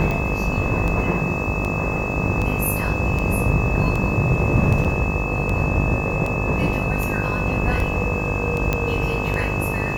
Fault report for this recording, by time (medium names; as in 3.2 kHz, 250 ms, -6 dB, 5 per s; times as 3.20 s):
buzz 50 Hz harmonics 25 -26 dBFS
tick 78 rpm -13 dBFS
whine 2.6 kHz -27 dBFS
4.84–4.85 s: dropout 6.8 ms
8.73 s: pop -7 dBFS